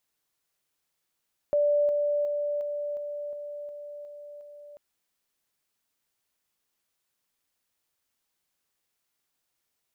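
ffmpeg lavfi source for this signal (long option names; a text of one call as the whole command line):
ffmpeg -f lavfi -i "aevalsrc='pow(10,(-20-3*floor(t/0.36))/20)*sin(2*PI*585*t)':duration=3.24:sample_rate=44100" out.wav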